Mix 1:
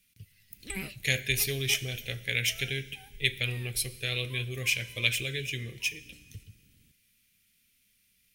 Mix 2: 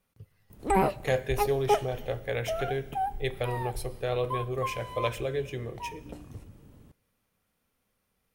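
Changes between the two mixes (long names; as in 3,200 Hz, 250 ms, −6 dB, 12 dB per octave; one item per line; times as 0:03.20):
background +10.5 dB
master: remove drawn EQ curve 220 Hz 0 dB, 910 Hz −21 dB, 2,300 Hz +12 dB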